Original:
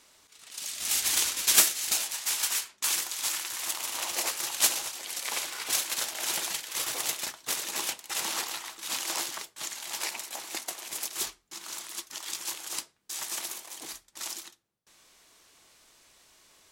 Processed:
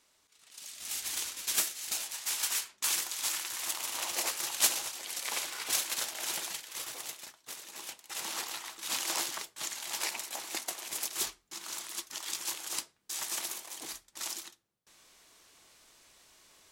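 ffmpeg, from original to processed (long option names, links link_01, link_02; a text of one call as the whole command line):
ffmpeg -i in.wav -af "volume=9.5dB,afade=type=in:start_time=1.7:duration=0.91:silence=0.446684,afade=type=out:start_time=5.87:duration=1.38:silence=0.298538,afade=type=in:start_time=7.78:duration=1.17:silence=0.251189" out.wav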